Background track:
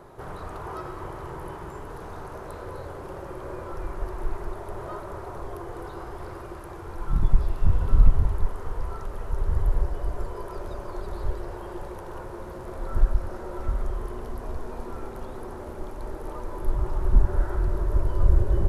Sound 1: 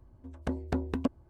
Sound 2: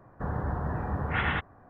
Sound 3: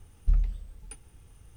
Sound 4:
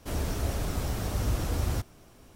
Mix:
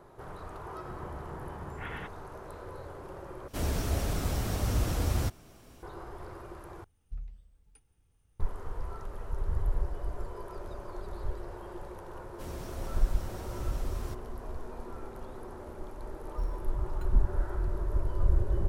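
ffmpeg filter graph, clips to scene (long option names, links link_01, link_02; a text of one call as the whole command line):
ffmpeg -i bed.wav -i cue0.wav -i cue1.wav -i cue2.wav -i cue3.wav -filter_complex "[4:a]asplit=2[link_01][link_02];[3:a]asplit=2[link_03][link_04];[0:a]volume=-6.5dB[link_05];[link_04]acrusher=samples=8:mix=1:aa=0.000001[link_06];[link_05]asplit=3[link_07][link_08][link_09];[link_07]atrim=end=3.484[link_10];[link_01]atrim=end=2.35[link_11];[link_08]atrim=start=5.826:end=6.844[link_12];[link_03]atrim=end=1.56,asetpts=PTS-STARTPTS,volume=-16.5dB[link_13];[link_09]atrim=start=8.396[link_14];[2:a]atrim=end=1.69,asetpts=PTS-STARTPTS,volume=-13dB,afade=type=in:duration=0.004:curve=hsin,afade=type=out:start_time=1.686:duration=0.004:curve=hsin,adelay=670[link_15];[link_02]atrim=end=2.35,asetpts=PTS-STARTPTS,volume=-11dB,afade=type=in:duration=0.004:curve=hsin,afade=type=out:start_time=2.346:duration=0.004:curve=hsin,adelay=12330[link_16];[link_06]atrim=end=1.56,asetpts=PTS-STARTPTS,volume=-10.5dB,afade=type=in:duration=0.004:curve=hsin,afade=type=out:start_time=1.556:duration=0.004:curve=hsin,adelay=16100[link_17];[link_10][link_11]acrossfade=duration=0.004:curve1=hsin:curve2=hsin[link_18];[link_18][link_12]acrossfade=duration=0.004:curve1=hsin:curve2=hsin[link_19];[link_19][link_13]acrossfade=duration=0.004:curve1=hsin:curve2=hsin[link_20];[link_20][link_14]acrossfade=duration=0.004:curve1=hsin:curve2=hsin[link_21];[link_21][link_15][link_16][link_17]amix=inputs=4:normalize=0" out.wav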